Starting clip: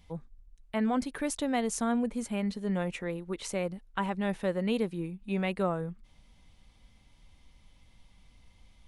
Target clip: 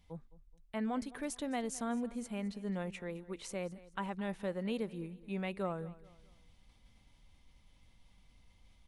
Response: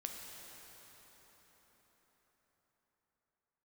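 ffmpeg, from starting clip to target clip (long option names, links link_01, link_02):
-af "areverse,acompressor=mode=upward:threshold=-48dB:ratio=2.5,areverse,aecho=1:1:213|426|639:0.112|0.0426|0.0162,volume=-7.5dB"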